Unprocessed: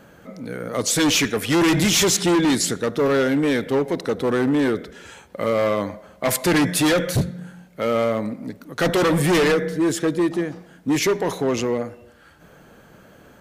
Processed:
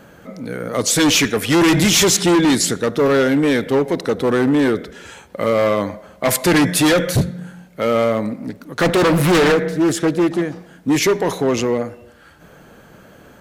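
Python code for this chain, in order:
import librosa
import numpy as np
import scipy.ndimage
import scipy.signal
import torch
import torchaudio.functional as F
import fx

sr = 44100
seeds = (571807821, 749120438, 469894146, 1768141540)

y = fx.doppler_dist(x, sr, depth_ms=0.43, at=(8.38, 10.42))
y = y * librosa.db_to_amplitude(4.0)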